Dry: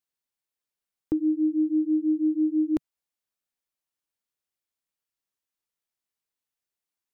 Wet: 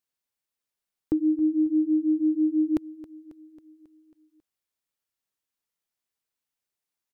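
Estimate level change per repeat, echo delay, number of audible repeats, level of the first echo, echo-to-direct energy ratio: -4.5 dB, 272 ms, 4, -17.0 dB, -15.0 dB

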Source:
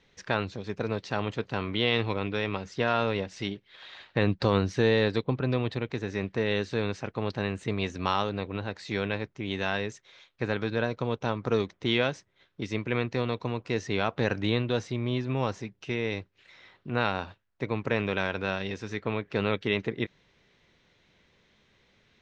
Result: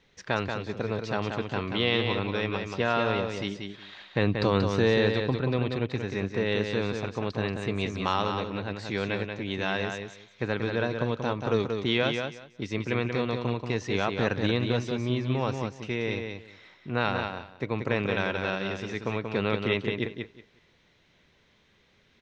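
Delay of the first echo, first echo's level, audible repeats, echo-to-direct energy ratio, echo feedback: 183 ms, -5.5 dB, 2, -5.5 dB, 18%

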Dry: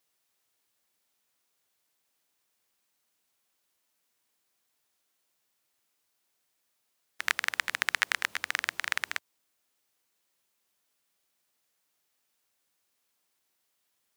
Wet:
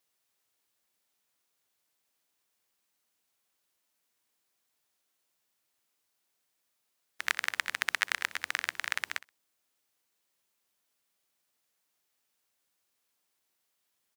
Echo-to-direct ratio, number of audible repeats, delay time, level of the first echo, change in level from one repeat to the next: -19.0 dB, 2, 63 ms, -19.0 dB, -15.5 dB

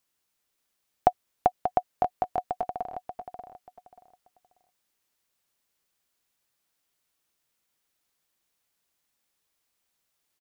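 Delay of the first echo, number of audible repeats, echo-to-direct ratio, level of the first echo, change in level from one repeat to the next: 585 ms, 3, -7.5 dB, -8.0 dB, -12.5 dB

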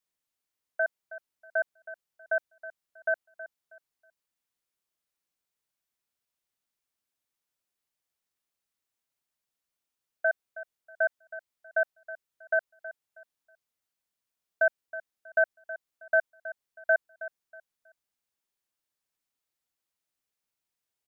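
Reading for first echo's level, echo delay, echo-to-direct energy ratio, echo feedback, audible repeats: -15.0 dB, 320 ms, -14.5 dB, 28%, 2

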